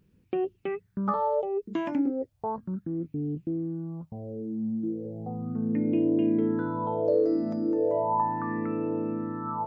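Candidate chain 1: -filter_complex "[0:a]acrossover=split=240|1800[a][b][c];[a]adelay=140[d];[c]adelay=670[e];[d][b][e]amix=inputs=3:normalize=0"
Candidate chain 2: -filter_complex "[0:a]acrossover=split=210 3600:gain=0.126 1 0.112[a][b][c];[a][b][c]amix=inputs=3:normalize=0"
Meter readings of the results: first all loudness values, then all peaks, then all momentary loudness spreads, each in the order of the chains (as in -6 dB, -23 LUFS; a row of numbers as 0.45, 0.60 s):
-30.5, -30.5 LUFS; -14.5, -14.5 dBFS; 10, 12 LU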